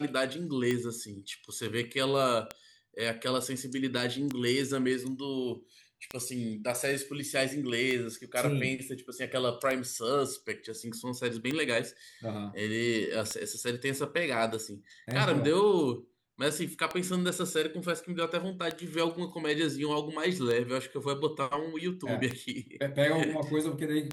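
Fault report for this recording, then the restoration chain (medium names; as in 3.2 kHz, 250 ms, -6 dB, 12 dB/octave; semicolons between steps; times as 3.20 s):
tick 33 1/3 rpm -17 dBFS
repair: de-click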